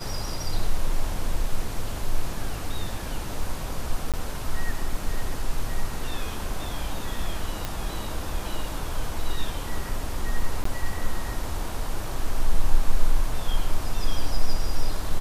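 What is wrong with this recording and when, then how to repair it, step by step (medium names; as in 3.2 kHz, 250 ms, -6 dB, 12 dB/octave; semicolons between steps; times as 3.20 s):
4.12–4.14 s: dropout 17 ms
7.65 s: pop
10.64–10.65 s: dropout 14 ms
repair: de-click; interpolate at 4.12 s, 17 ms; interpolate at 10.64 s, 14 ms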